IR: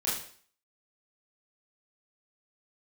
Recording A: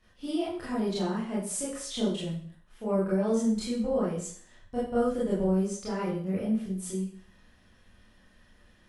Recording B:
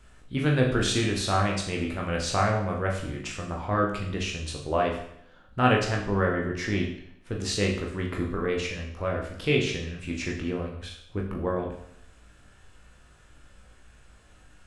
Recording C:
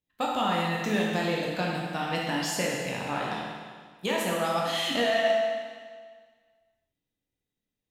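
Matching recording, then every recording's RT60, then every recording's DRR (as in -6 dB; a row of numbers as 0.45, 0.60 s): A; 0.50, 0.70, 1.7 s; -8.5, -1.0, -3.5 dB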